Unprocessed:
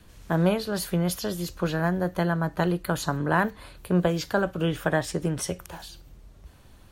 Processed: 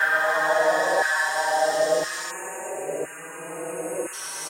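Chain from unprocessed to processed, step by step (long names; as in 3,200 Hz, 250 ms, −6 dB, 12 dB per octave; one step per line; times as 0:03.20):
extreme stretch with random phases 15×, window 0.50 s, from 0:04.90
auto-filter high-pass saw down 0.64 Hz 530–1,500 Hz
time-frequency box erased 0:03.55–0:06.36, 2,900–6,400 Hz
phase-vocoder stretch with locked phases 0.65×
barber-pole flanger 4.6 ms +0.66 Hz
level +8 dB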